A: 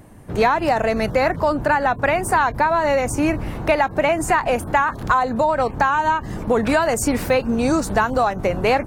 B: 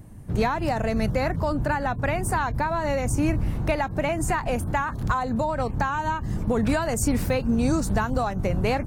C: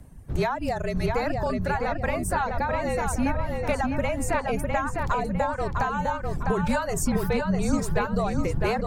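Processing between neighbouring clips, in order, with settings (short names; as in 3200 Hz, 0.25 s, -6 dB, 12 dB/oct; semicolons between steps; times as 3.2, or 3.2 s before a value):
tone controls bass +12 dB, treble +5 dB; gain -8.5 dB
frequency shift -43 Hz; reverb removal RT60 1.1 s; darkening echo 0.654 s, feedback 41%, low-pass 3800 Hz, level -3.5 dB; gain -1.5 dB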